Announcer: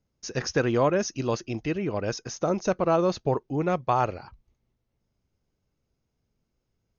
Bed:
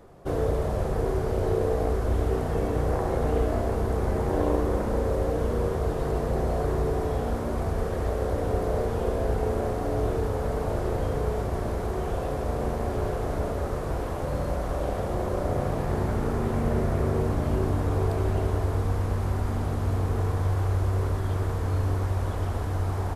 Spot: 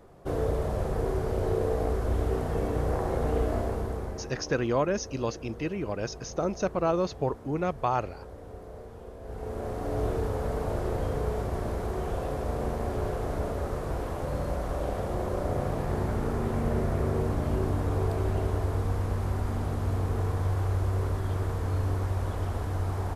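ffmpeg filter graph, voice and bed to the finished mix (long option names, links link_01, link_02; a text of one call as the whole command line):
ffmpeg -i stem1.wav -i stem2.wav -filter_complex "[0:a]adelay=3950,volume=-3.5dB[link_01];[1:a]volume=12.5dB,afade=type=out:start_time=3.58:duration=0.76:silence=0.177828,afade=type=in:start_time=9.21:duration=0.82:silence=0.177828[link_02];[link_01][link_02]amix=inputs=2:normalize=0" out.wav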